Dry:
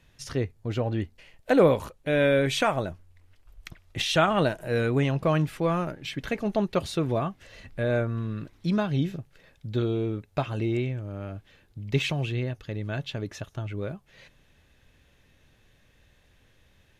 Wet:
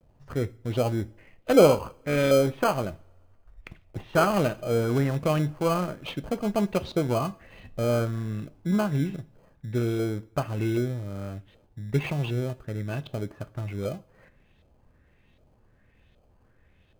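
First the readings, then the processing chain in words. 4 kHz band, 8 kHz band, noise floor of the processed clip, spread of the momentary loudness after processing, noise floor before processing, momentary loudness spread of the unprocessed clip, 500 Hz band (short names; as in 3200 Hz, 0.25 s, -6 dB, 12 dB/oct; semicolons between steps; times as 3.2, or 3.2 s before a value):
-4.5 dB, +1.5 dB, -62 dBFS, 15 LU, -62 dBFS, 14 LU, +1.5 dB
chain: bell 2700 Hz -5 dB 2.2 oct; LFO low-pass saw up 1.3 Hz 620–3700 Hz; vibrato 0.35 Hz 28 cents; in parallel at -5.5 dB: sample-and-hold 24×; on the sum: two-slope reverb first 0.41 s, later 2 s, from -26 dB, DRR 14 dB; gain -3.5 dB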